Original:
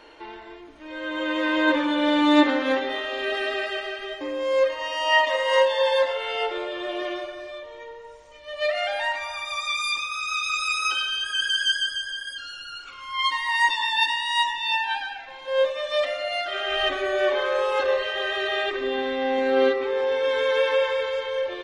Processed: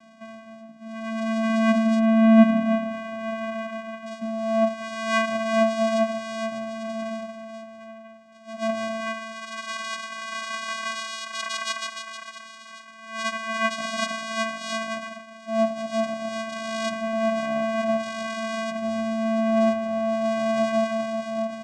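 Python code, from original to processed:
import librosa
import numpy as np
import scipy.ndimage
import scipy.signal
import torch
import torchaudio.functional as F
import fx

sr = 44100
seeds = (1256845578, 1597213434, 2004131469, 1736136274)

y = fx.lowpass(x, sr, hz=2000.0, slope=24, at=(1.99, 4.06))
y = fx.vocoder(y, sr, bands=4, carrier='square', carrier_hz=223.0)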